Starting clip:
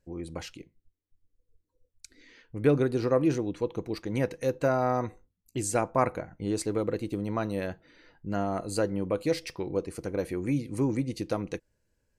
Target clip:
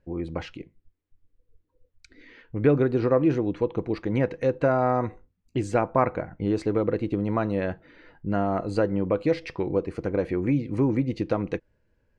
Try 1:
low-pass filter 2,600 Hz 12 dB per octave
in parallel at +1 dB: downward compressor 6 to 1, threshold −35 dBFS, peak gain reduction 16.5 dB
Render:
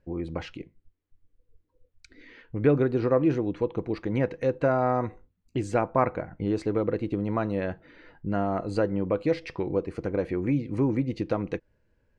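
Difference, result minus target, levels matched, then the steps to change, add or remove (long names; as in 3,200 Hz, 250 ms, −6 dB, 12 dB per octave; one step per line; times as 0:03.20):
downward compressor: peak gain reduction +6 dB
change: downward compressor 6 to 1, threshold −28 dBFS, peak gain reduction 11 dB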